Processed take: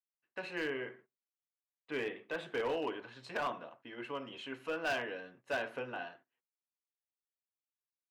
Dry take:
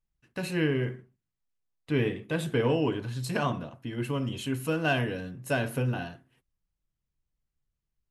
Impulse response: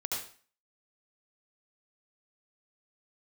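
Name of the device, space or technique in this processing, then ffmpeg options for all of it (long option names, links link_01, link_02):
walkie-talkie: -af "highpass=530,lowpass=2800,asoftclip=type=hard:threshold=-26.5dB,agate=range=-13dB:threshold=-57dB:ratio=16:detection=peak,volume=-3dB"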